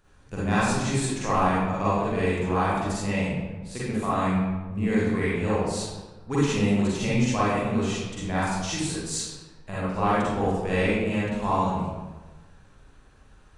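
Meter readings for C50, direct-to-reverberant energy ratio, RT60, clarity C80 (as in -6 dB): -4.5 dB, -10.0 dB, 1.2 s, 0.5 dB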